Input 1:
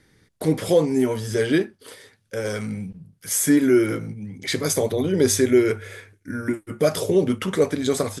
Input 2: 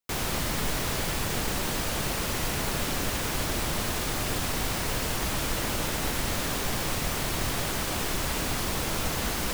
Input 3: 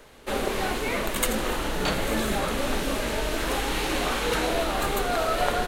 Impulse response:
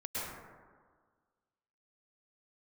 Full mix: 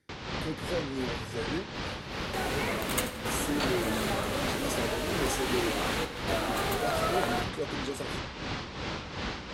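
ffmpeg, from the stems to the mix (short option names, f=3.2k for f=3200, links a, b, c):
-filter_complex "[0:a]asoftclip=type=tanh:threshold=-9dB,volume=-14.5dB,asplit=2[a][b];[1:a]bandreject=f=670:w=12,tremolo=f=2.7:d=0.61,lowpass=f=4.8k:w=0.5412,lowpass=f=4.8k:w=1.3066,volume=-2.5dB[c];[2:a]adelay=1750,volume=-5.5dB,asplit=3[d][e][f];[e]volume=-18dB[g];[f]volume=-14.5dB[h];[b]apad=whole_len=327230[i];[d][i]sidechaingate=range=-33dB:threshold=-56dB:ratio=16:detection=peak[j];[3:a]atrim=start_sample=2205[k];[g][k]afir=irnorm=-1:irlink=0[l];[h]aecho=0:1:87:1[m];[a][c][j][l][m]amix=inputs=5:normalize=0,highpass=55"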